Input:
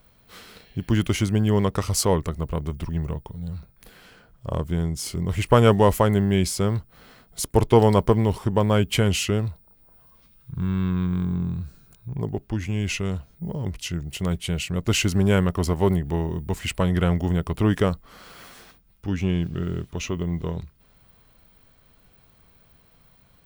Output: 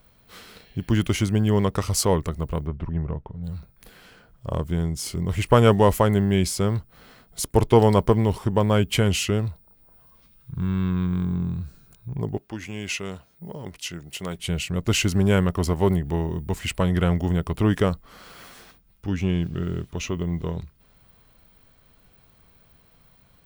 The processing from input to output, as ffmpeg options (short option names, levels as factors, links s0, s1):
-filter_complex "[0:a]asplit=3[s0][s1][s2];[s0]afade=t=out:st=2.65:d=0.02[s3];[s1]lowpass=1800,afade=t=in:st=2.65:d=0.02,afade=t=out:st=3.43:d=0.02[s4];[s2]afade=t=in:st=3.43:d=0.02[s5];[s3][s4][s5]amix=inputs=3:normalize=0,asettb=1/sr,asplit=3[s6][s7][s8];[s6]atrim=end=12.374[s9];[s7]atrim=start=12.37:end=14.39,asetpts=PTS-STARTPTS,afade=t=in:d=0.004:c=qsin,afade=t=out:st=2.016:d=0.004:c=qsin,highpass=f=390:p=1[s10];[s8]atrim=start=14.386[s11];[s9][s10]acrossfade=d=0.004:c1=hsin:c2=qsin[s12];[s12][s11]acrossfade=d=0.004:c1=qsin:c2=hsin"